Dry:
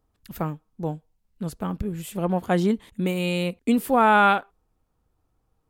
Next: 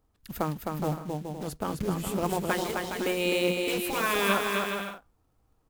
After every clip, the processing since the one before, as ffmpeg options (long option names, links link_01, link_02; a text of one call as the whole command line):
ffmpeg -i in.wav -af "acrusher=bits=5:mode=log:mix=0:aa=0.000001,afftfilt=real='re*lt(hypot(re,im),0.447)':imag='im*lt(hypot(re,im),0.447)':win_size=1024:overlap=0.75,aecho=1:1:260|416|509.6|565.8|599.5:0.631|0.398|0.251|0.158|0.1" out.wav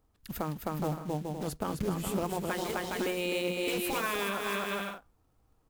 ffmpeg -i in.wav -af "alimiter=limit=-21dB:level=0:latency=1:release=262" out.wav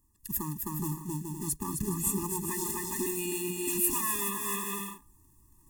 ffmpeg -i in.wav -af "highshelf=frequency=5600:width_type=q:width=1.5:gain=13.5,areverse,acompressor=mode=upward:threshold=-50dB:ratio=2.5,areverse,afftfilt=real='re*eq(mod(floor(b*sr/1024/410),2),0)':imag='im*eq(mod(floor(b*sr/1024/410),2),0)':win_size=1024:overlap=0.75" out.wav